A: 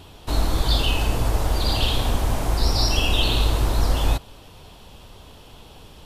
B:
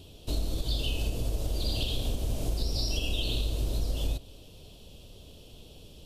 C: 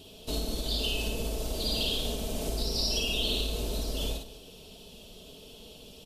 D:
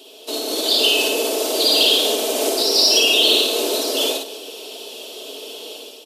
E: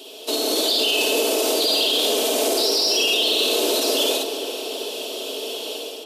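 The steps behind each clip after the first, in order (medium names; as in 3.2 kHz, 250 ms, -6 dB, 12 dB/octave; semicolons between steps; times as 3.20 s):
high-order bell 1.3 kHz -14.5 dB; compression, threshold -21 dBFS, peak gain reduction 8 dB; on a send at -17 dB: reverberation RT60 0.70 s, pre-delay 27 ms; on the sum: trim -4.5 dB
bass shelf 120 Hz -11.5 dB; comb 4.6 ms, depth 45%; on a send: multi-tap echo 55/199 ms -3.5/-15 dB; on the sum: trim +2 dB
steep high-pass 290 Hz 48 dB/octave; level rider gain up to 9 dB; in parallel at -11 dB: overload inside the chain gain 21.5 dB; on the sum: trim +5.5 dB
peak limiter -15.5 dBFS, peak gain reduction 11.5 dB; tape echo 388 ms, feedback 72%, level -9 dB, low-pass 2.6 kHz; trim +3.5 dB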